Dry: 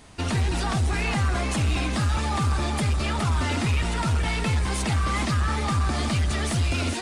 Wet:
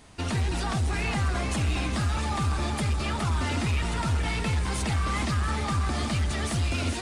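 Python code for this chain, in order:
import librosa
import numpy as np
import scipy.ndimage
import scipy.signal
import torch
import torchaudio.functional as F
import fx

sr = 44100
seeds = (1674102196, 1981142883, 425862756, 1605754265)

y = x + 10.0 ** (-13.0 / 20.0) * np.pad(x, (int(684 * sr / 1000.0), 0))[:len(x)]
y = y * librosa.db_to_amplitude(-3.0)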